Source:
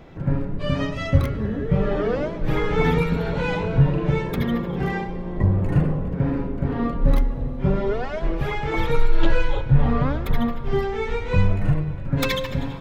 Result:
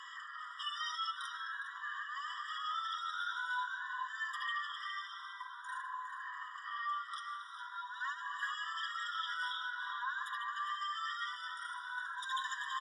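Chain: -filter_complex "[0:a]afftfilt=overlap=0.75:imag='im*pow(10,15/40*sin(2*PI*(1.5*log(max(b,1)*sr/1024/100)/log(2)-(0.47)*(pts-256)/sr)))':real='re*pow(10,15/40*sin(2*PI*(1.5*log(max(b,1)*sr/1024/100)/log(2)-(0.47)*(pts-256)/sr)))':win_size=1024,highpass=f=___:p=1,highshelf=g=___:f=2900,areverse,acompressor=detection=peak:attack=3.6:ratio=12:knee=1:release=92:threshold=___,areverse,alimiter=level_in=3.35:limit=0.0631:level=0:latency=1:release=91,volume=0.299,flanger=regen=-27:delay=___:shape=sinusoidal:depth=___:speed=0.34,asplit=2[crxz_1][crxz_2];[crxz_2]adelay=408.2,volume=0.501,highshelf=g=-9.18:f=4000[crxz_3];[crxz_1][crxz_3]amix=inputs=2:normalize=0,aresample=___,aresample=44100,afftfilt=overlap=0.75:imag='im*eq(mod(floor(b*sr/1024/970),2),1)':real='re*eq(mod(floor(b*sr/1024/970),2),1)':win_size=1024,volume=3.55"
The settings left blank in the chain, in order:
800, 4, 0.0158, 3, 4.6, 22050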